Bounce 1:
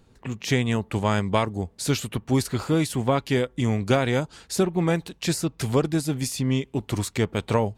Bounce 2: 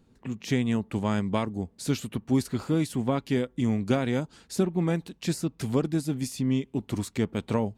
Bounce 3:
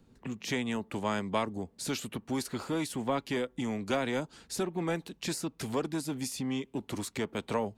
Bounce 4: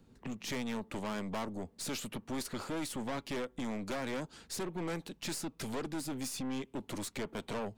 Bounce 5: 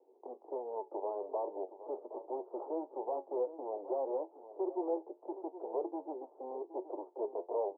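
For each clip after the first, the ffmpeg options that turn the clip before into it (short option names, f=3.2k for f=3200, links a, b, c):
-af "equalizer=f=230:t=o:w=1.2:g=8,volume=-7.5dB"
-filter_complex "[0:a]acrossover=split=270|510|4800[a][b][c][d];[a]acompressor=threshold=-40dB:ratio=5[e];[b]asoftclip=type=tanh:threshold=-33.5dB[f];[e][f][c][d]amix=inputs=4:normalize=0"
-af "aeval=exprs='(tanh(56.2*val(0)+0.4)-tanh(0.4))/56.2':c=same,volume=1dB"
-af "flanger=delay=10:depth=2.4:regen=64:speed=1.3:shape=triangular,asuperpass=centerf=560:order=12:qfactor=0.97,aecho=1:1:769:0.211,volume=9.5dB"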